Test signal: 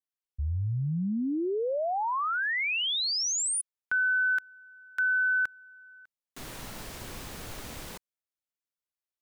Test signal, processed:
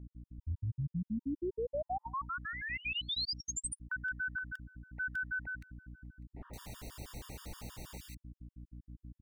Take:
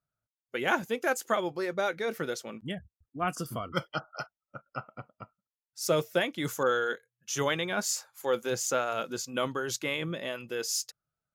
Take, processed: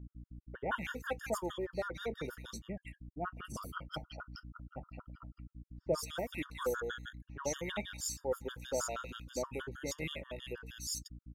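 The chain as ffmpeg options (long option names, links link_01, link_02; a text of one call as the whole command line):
ffmpeg -i in.wav -filter_complex "[0:a]acrossover=split=1700[link_01][link_02];[link_02]adelay=170[link_03];[link_01][link_03]amix=inputs=2:normalize=0,aeval=exprs='val(0)+0.00891*(sin(2*PI*60*n/s)+sin(2*PI*2*60*n/s)/2+sin(2*PI*3*60*n/s)/3+sin(2*PI*4*60*n/s)/4+sin(2*PI*5*60*n/s)/5)':channel_layout=same,afftfilt=real='re*gt(sin(2*PI*6.3*pts/sr)*(1-2*mod(floor(b*sr/1024/930),2)),0)':imag='im*gt(sin(2*PI*6.3*pts/sr)*(1-2*mod(floor(b*sr/1024/930),2)),0)':win_size=1024:overlap=0.75,volume=-5dB" out.wav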